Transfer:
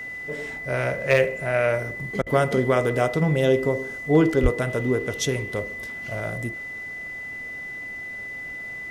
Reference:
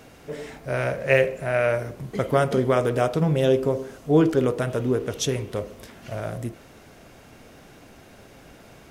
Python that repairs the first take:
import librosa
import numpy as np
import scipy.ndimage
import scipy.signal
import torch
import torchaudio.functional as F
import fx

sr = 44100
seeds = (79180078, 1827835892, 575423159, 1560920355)

y = fx.fix_declip(x, sr, threshold_db=-8.5)
y = fx.notch(y, sr, hz=2000.0, q=30.0)
y = fx.highpass(y, sr, hz=140.0, slope=24, at=(2.2, 2.32), fade=0.02)
y = fx.highpass(y, sr, hz=140.0, slope=24, at=(4.42, 4.54), fade=0.02)
y = fx.fix_interpolate(y, sr, at_s=(2.22,), length_ms=43.0)